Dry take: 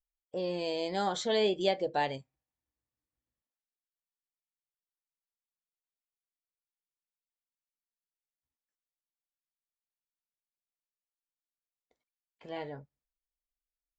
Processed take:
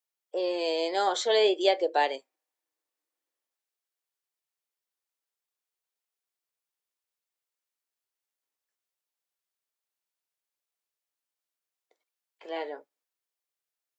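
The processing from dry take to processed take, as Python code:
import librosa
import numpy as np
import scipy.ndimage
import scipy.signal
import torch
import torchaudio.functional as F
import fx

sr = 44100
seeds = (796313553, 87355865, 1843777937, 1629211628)

y = scipy.signal.sosfilt(scipy.signal.butter(6, 330.0, 'highpass', fs=sr, output='sos'), x)
y = y * librosa.db_to_amplitude(5.5)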